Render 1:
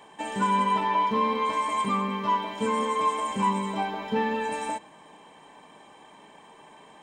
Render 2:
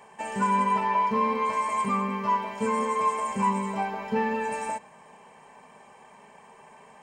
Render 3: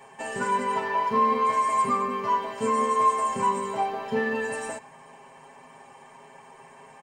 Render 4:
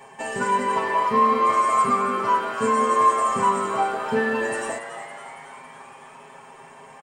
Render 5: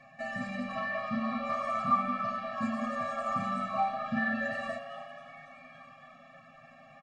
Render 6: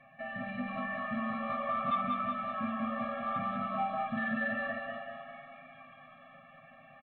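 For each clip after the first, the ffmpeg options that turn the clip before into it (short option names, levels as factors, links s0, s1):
-af "superequalizer=6b=0.251:13b=0.355"
-af "aecho=1:1:7.4:0.95"
-filter_complex "[0:a]asplit=9[s0][s1][s2][s3][s4][s5][s6][s7][s8];[s1]adelay=279,afreqshift=120,volume=0.251[s9];[s2]adelay=558,afreqshift=240,volume=0.16[s10];[s3]adelay=837,afreqshift=360,volume=0.102[s11];[s4]adelay=1116,afreqshift=480,volume=0.0661[s12];[s5]adelay=1395,afreqshift=600,volume=0.0422[s13];[s6]adelay=1674,afreqshift=720,volume=0.0269[s14];[s7]adelay=1953,afreqshift=840,volume=0.0172[s15];[s8]adelay=2232,afreqshift=960,volume=0.0111[s16];[s0][s9][s10][s11][s12][s13][s14][s15][s16]amix=inputs=9:normalize=0,volume=1.5"
-af "lowpass=f=5000:w=0.5412,lowpass=f=5000:w=1.3066,flanger=delay=0.6:depth=3.2:regen=-68:speed=1.7:shape=sinusoidal,afftfilt=real='re*eq(mod(floor(b*sr/1024/270),2),0)':imag='im*eq(mod(floor(b*sr/1024/270),2),0)':win_size=1024:overlap=0.75"
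-af "asoftclip=type=tanh:threshold=0.075,aecho=1:1:193|386|579|772|965|1158:0.631|0.29|0.134|0.0614|0.0283|0.013,aresample=8000,aresample=44100,volume=0.708"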